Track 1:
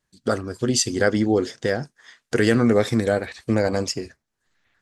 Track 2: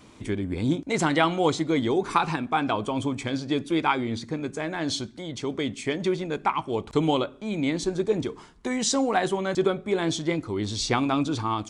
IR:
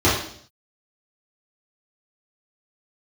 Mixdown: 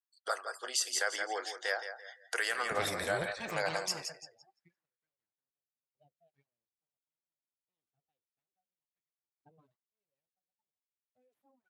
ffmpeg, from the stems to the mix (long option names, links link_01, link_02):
-filter_complex "[0:a]highpass=frequency=720:width=0.5412,highpass=frequency=720:width=1.3066,aexciter=amount=1.8:drive=7.7:freq=9400,volume=-4dB,asplit=3[link_01][link_02][link_03];[link_02]volume=-9.5dB[link_04];[1:a]aeval=exprs='abs(val(0))':channel_layout=same,highpass=110,aeval=exprs='val(0)*pow(10,-23*if(lt(mod(0.58*n/s,1),2*abs(0.58)/1000),1-mod(0.58*n/s,1)/(2*abs(0.58)/1000),(mod(0.58*n/s,1)-2*abs(0.58)/1000)/(1-2*abs(0.58)/1000))/20)':channel_layout=same,adelay=2500,volume=0.5dB[link_05];[link_03]apad=whole_len=626153[link_06];[link_05][link_06]sidechaingate=range=-33dB:threshold=-57dB:ratio=16:detection=peak[link_07];[link_04]aecho=0:1:169|338|507|676|845:1|0.36|0.13|0.0467|0.0168[link_08];[link_01][link_07][link_08]amix=inputs=3:normalize=0,afftdn=noise_reduction=24:noise_floor=-53,alimiter=limit=-20dB:level=0:latency=1:release=104"